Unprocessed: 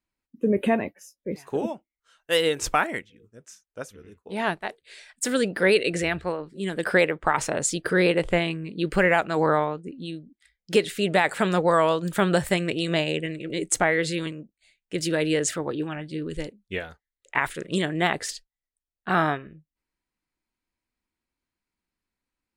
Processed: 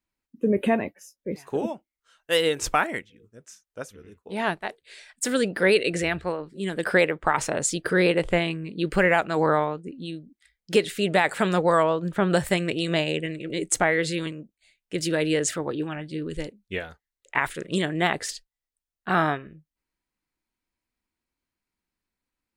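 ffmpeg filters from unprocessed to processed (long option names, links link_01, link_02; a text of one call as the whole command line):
ffmpeg -i in.wav -filter_complex "[0:a]asplit=3[link_01][link_02][link_03];[link_01]afade=type=out:start_time=11.82:duration=0.02[link_04];[link_02]lowpass=frequency=1400:poles=1,afade=type=in:start_time=11.82:duration=0.02,afade=type=out:start_time=12.29:duration=0.02[link_05];[link_03]afade=type=in:start_time=12.29:duration=0.02[link_06];[link_04][link_05][link_06]amix=inputs=3:normalize=0" out.wav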